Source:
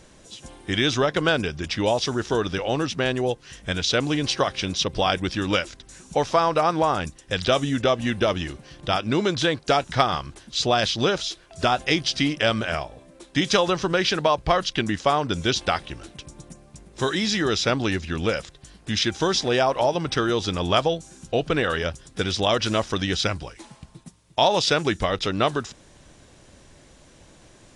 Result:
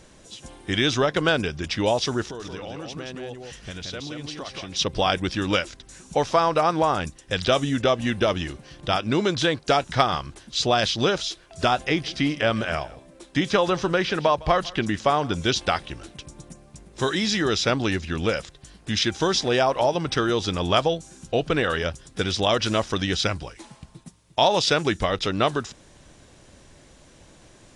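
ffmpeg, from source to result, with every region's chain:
-filter_complex "[0:a]asettb=1/sr,asplit=3[a][b][c];[a]atrim=end=2.224[d];[b]atrim=start=2.22:end=4.76,asetpts=PTS-STARTPTS,afade=t=in:d=0.004:c=qsin,afade=t=out:st=2.536:d=0.004:c=qsin,bandreject=f=1.6k:w=26,acompressor=threshold=-33dB:ratio=5:attack=3.2:release=140:knee=1:detection=peak,aecho=1:1:176:0.631,atrim=end_sample=112014[e];[c]atrim=start=4.756[f];[d][e]acrossfade=d=0.004:c1=hsin:c2=qsin[g];[g][f]acrossfade=d=0.004:c1=qsin:c2=hsin,asettb=1/sr,asplit=3[h][i][j];[h]atrim=end=11.814[k];[i]atrim=start=11.81:end=15.35,asetpts=PTS-STARTPTS,afade=t=in:d=0.004:c=qsin,afade=t=out:st=3.536:d=0.004:c=qsin,aecho=1:1:158:0.0841,atrim=end_sample=156114,acrossover=split=2600[l][m];[m]acompressor=threshold=-32dB:ratio=4:attack=1:release=60[n];[l][n]amix=inputs=2:normalize=0[o];[j]atrim=start=15.346[p];[k][o]acrossfade=d=0.004:c1=hsin:c2=qsin[q];[q][p]acrossfade=d=0.004:c1=qsin:c2=hsin"

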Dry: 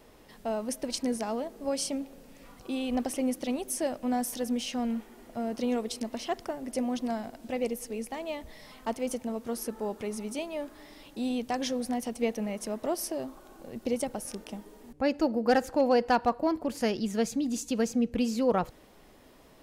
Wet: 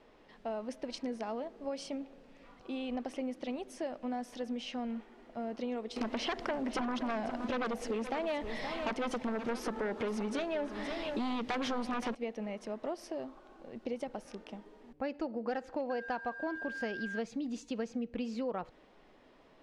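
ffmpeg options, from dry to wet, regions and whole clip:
-filter_complex "[0:a]asettb=1/sr,asplit=3[a][b][c];[a]atrim=end=5.964[d];[b]atrim=start=5.96:end=12.15,asetpts=PTS-STARTPTS,afade=t=in:d=0.004:c=qsin,afade=t=out:st=6.186:d=0.004:c=qsin,aeval=exprs='0.133*sin(PI/2*3.98*val(0)/0.133)':c=same,aecho=1:1:522:0.237,atrim=end_sample=272979[e];[c]atrim=start=12.146[f];[d][e]acrossfade=d=0.004:c1=hsin:c2=qsin[g];[g][f]acrossfade=d=0.004:c1=qsin:c2=hsin,asettb=1/sr,asplit=3[h][i][j];[h]atrim=end=15.904[k];[i]atrim=start=15.9:end=17.19,asetpts=PTS-STARTPTS,afade=t=in:d=0.004:c=qsin,afade=t=out:st=1.286:d=0.004:c=qsin,aeval=exprs='val(0)+0.0224*sin(2*PI*1600*n/s)':c=same,aeval=exprs='sgn(val(0))*max(abs(val(0))-0.00224,0)':c=same[l];[j]atrim=start=17.186[m];[k][l]acrossfade=d=0.004:c1=hsin:c2=qsin[n];[n][m]acrossfade=d=0.004:c1=qsin:c2=hsin,lowpass=3.5k,equalizer=f=69:t=o:w=2.5:g=-9,acompressor=threshold=-29dB:ratio=6,volume=-3.5dB"

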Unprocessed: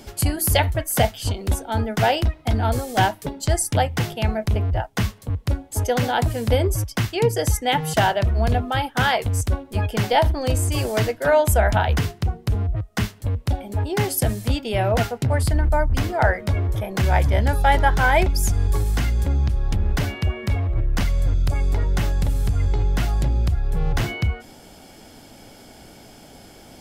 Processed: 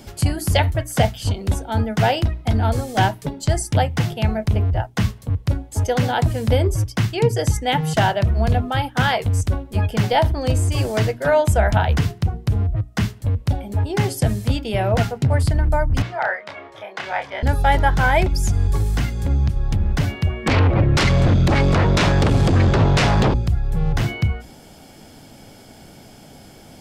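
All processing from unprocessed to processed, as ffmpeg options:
-filter_complex "[0:a]asettb=1/sr,asplit=3[a][b][c];[a]atrim=end=16.024[d];[b]atrim=start=16.02:end=17.43,asetpts=PTS-STARTPTS,afade=t=in:d=0.004:c=qsin,afade=t=out:st=1.406:d=0.004:c=qsin,highpass=760,lowpass=3.7k,asplit=2[e][f];[f]adelay=29,volume=-5dB[g];[e][g]amix=inputs=2:normalize=0,atrim=end_sample=62181[h];[c]atrim=start=17.426[i];[d][h]acrossfade=d=0.004:c1=hsin:c2=qsin[j];[j][i]acrossfade=d=0.004:c1=qsin:c2=hsin,asettb=1/sr,asplit=3[k][l][m];[k]atrim=end=20.464[n];[l]atrim=start=20.46:end=23.34,asetpts=PTS-STARTPTS,afade=t=in:d=0.004:c=qsin,afade=t=out:st=2.876:d=0.004:c=qsin,highpass=120,lowpass=4.2k,aeval=exprs='0.2*sin(PI/2*5.01*val(0)/0.2)':c=same[o];[m]atrim=start=23.336[p];[n][o]acrossfade=d=0.004:c1=hsin:c2=qsin[q];[q][p]acrossfade=d=0.004:c1=qsin:c2=hsin,equalizer=f=140:w=0.97:g=6,bandreject=f=60:t=h:w=6,bandreject=f=120:t=h:w=6,bandreject=f=180:t=h:w=6,bandreject=f=240:t=h:w=6,bandreject=f=300:t=h:w=6,bandreject=f=360:t=h:w=6,bandreject=f=420:t=h:w=6,acrossover=split=9200[r][s];[s]acompressor=threshold=-45dB:ratio=4:attack=1:release=60[t];[r][t]amix=inputs=2:normalize=0"

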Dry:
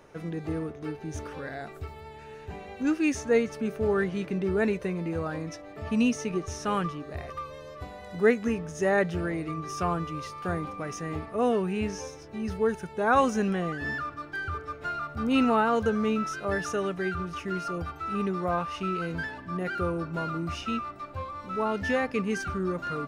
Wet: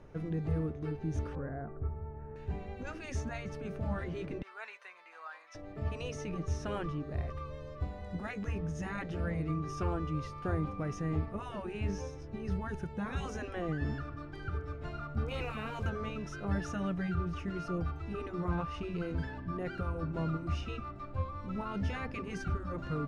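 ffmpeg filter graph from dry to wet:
-filter_complex "[0:a]asettb=1/sr,asplit=3[a][b][c];[a]atrim=end=1.354[d];[b]atrim=start=1.35:end=2.36,asetpts=PTS-STARTPTS,afade=t=in:d=0.004:c=qsin,afade=t=out:st=1.006:d=0.004:c=qsin,lowpass=f=1.5k:w=0.5412,lowpass=f=1.5k:w=1.3066,bandreject=f=820:w=18[e];[c]atrim=start=2.356[f];[d][e]acrossfade=d=0.004:c1=hsin:c2=qsin[g];[g][f]acrossfade=d=0.004:c1=qsin:c2=hsin,asettb=1/sr,asplit=3[h][i][j];[h]atrim=end=4.424[k];[i]atrim=start=4.42:end=5.55,asetpts=PTS-STARTPTS,afade=t=in:d=0.004:c=qsin,afade=t=out:st=1.126:d=0.004:c=qsin,highpass=f=990:w=0.5412,highpass=f=990:w=1.3066,highshelf=f=8k:g=-7[l];[j]atrim=start=5.546[m];[k][l]acrossfade=d=0.004:c1=hsin:c2=qsin[n];[n][m]acrossfade=d=0.004:c1=qsin:c2=hsin,asettb=1/sr,asplit=3[o][p][q];[o]atrim=end=15.284[r];[p]atrim=start=15.28:end=15.89,asetpts=PTS-STARTPTS,afade=t=in:d=0.004:c=qsin,afade=t=out:st=0.606:d=0.004:c=qsin,equalizer=f=2.4k:t=o:w=0.24:g=11,acrusher=bits=7:mix=0:aa=0.5[s];[q]atrim=start=15.886[t];[r][s]acrossfade=d=0.004:c1=hsin:c2=qsin[u];[u][t]acrossfade=d=0.004:c1=qsin:c2=hsin,highshelf=f=3.7k:g=7.5,afftfilt=real='re*lt(hypot(re,im),0.224)':imag='im*lt(hypot(re,im),0.224)':win_size=1024:overlap=0.75,aemphasis=mode=reproduction:type=riaa,volume=-6.5dB"

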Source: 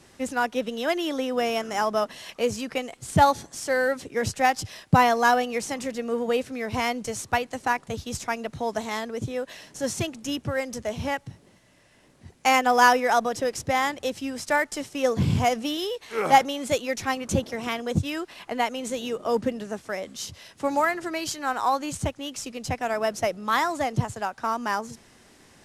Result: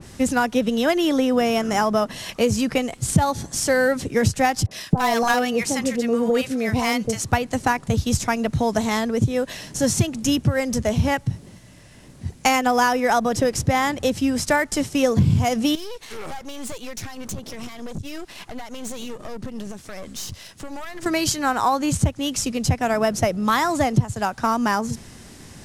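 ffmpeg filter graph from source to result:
-filter_complex "[0:a]asettb=1/sr,asplit=3[a][b][c];[a]atrim=end=4.664[d];[b]atrim=start=4.66:end=7.24,asetpts=PTS-STARTPTS,afade=t=in:d=0.004:c=qsin,afade=t=out:st=2.576:d=0.004:c=qsin,aeval=exprs='clip(val(0),-1,0.15)':c=same,lowshelf=f=130:g=-11.5,acrossover=split=850[e][f];[f]adelay=50[g];[e][g]amix=inputs=2:normalize=0,atrim=end_sample=113778[h];[c]atrim=start=7.236[i];[d][h]acrossfade=d=0.004:c1=hsin:c2=qsin[j];[j][i]acrossfade=d=0.004:c1=qsin:c2=hsin,asettb=1/sr,asplit=3[k][l][m];[k]atrim=end=15.754[n];[l]atrim=start=15.75:end=21.06,asetpts=PTS-STARTPTS,afade=t=in:d=0.004:c=qsin,afade=t=out:st=5.306:d=0.004:c=qsin,acompressor=threshold=-33dB:ratio=6:attack=3.2:release=140:knee=1:detection=peak,aeval=exprs='(tanh(70.8*val(0)+0.75)-tanh(0.75))/70.8':c=same,lowshelf=f=360:g=-4.5[o];[m]atrim=start=21.056[p];[n][o]acrossfade=d=0.004:c1=hsin:c2=qsin[q];[q][p]acrossfade=d=0.004:c1=qsin:c2=hsin,bass=f=250:g=11,treble=f=4k:g=5,acompressor=threshold=-22dB:ratio=5,adynamicequalizer=threshold=0.00891:dfrequency=2700:dqfactor=0.7:tfrequency=2700:tqfactor=0.7:attack=5:release=100:ratio=0.375:range=2:mode=cutabove:tftype=highshelf,volume=7dB"

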